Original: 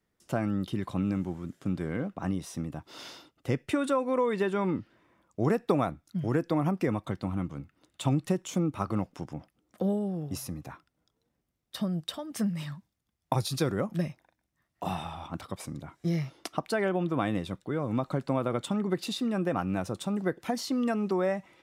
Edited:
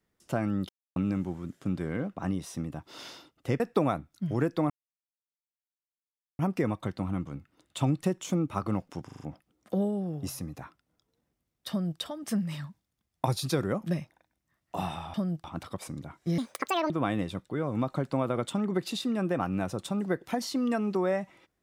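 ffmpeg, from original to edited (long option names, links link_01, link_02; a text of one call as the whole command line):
ffmpeg -i in.wav -filter_complex "[0:a]asplit=13[link_01][link_02][link_03][link_04][link_05][link_06][link_07][link_08][link_09][link_10][link_11][link_12][link_13];[link_01]atrim=end=0.69,asetpts=PTS-STARTPTS,afade=type=out:start_time=0.686:duration=0.004:curve=hsin[link_14];[link_02]atrim=start=0.69:end=0.96,asetpts=PTS-STARTPTS,volume=0[link_15];[link_03]atrim=start=0.96:end=3.602,asetpts=PTS-STARTPTS,afade=type=in:duration=0.004:curve=hsin[link_16];[link_04]atrim=start=5.528:end=6.63,asetpts=PTS-STARTPTS,afade=type=out:start_time=1.098:duration=0.004:curve=hsin,apad=pad_dur=1.69[link_17];[link_05]atrim=start=6.63:end=9.332,asetpts=PTS-STARTPTS,afade=type=in:duration=0.004:curve=hsin[link_18];[link_06]atrim=start=9.288:end=9.332[link_19];[link_07]atrim=start=9.288:end=9.332[link_20];[link_08]atrim=start=9.288:end=9.332[link_21];[link_09]atrim=start=9.288:end=15.222[link_22];[link_10]atrim=start=11.778:end=12.082[link_23];[link_11]atrim=start=15.218:end=16.164[link_24];[link_12]atrim=start=16.16:end=17.06,asetpts=PTS-STARTPTS,asetrate=76293,aresample=44100,atrim=end_sample=22942,asetpts=PTS-STARTPTS[link_25];[link_13]atrim=start=17.056[link_26];[link_14][link_15][link_16]concat=n=3:v=0:a=1[link_27];[link_17][link_18]concat=n=2:v=0:a=1[link_28];[link_27][link_28]acrossfade=duration=0.004:curve1=hsin:curve2=hsin[link_29];[link_29][link_19]acrossfade=duration=0.004:curve1=hsin:curve2=hsin[link_30];[link_30][link_20]acrossfade=duration=0.004:curve1=hsin:curve2=hsin[link_31];[link_31][link_21]acrossfade=duration=0.004:curve1=hsin:curve2=hsin[link_32];[link_32][link_22]acrossfade=duration=0.004:curve1=hsin:curve2=hsin[link_33];[link_33][link_23]acrossfade=duration=0.004:curve1=hsin:curve2=hsin[link_34];[link_34][link_24]acrossfade=duration=0.004:curve1=hsin:curve2=hsin[link_35];[link_35][link_25]acrossfade=duration=0.004:curve1=hsin:curve2=hsin[link_36];[link_36][link_26]acrossfade=duration=0.004:curve1=hsin:curve2=hsin" out.wav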